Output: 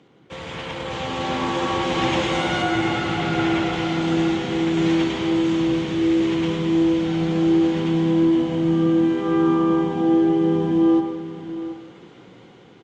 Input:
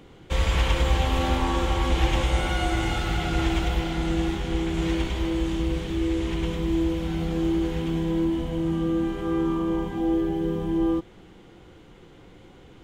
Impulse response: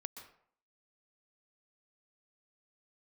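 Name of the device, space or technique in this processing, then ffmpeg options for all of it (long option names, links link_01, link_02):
far-field microphone of a smart speaker: -filter_complex "[0:a]asettb=1/sr,asplit=3[link_01][link_02][link_03];[link_01]atrim=end=2.624[link_04];[link_02]atrim=start=2.62:end=3.73,asetpts=PTS-STARTPTS,afade=type=in:duration=0.004:curve=qsin,afade=type=out:start_time=1.106:duration=0.004:curve=qsin,acrossover=split=3100[link_05][link_06];[link_06]acompressor=threshold=-43dB:ratio=4:attack=1:release=60[link_07];[link_05][link_07]amix=inputs=2:normalize=0[link_08];[link_03]atrim=start=3.726[link_09];[link_04][link_08]acrossfade=duration=0.004:curve1=hsin:curve2=qsin[link_10];[link_10][link_09]acrossfade=duration=0.004:curve1=qsin:curve2=hsin,lowpass=frequency=7000:width=0.5412,lowpass=frequency=7000:width=1.3066,aecho=1:1:729:0.211[link_11];[1:a]atrim=start_sample=2205[link_12];[link_11][link_12]afir=irnorm=-1:irlink=0,highpass=frequency=120:width=0.5412,highpass=frequency=120:width=1.3066,dynaudnorm=framelen=380:gausssize=7:maxgain=9dB" -ar 48000 -c:a libopus -b:a 48k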